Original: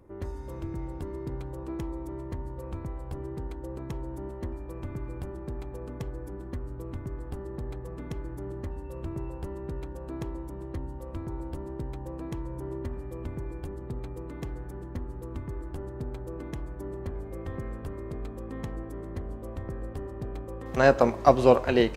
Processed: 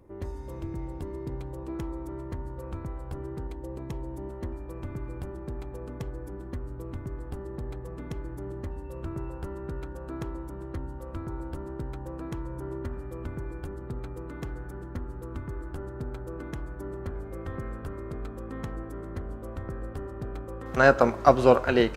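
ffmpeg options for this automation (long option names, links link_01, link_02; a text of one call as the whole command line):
ffmpeg -i in.wav -af "asetnsamples=nb_out_samples=441:pad=0,asendcmd='1.75 equalizer g 5;3.47 equalizer g -4.5;4.3 equalizer g 2;9.03 equalizer g 9',equalizer=frequency=1400:width_type=o:width=0.36:gain=-3" out.wav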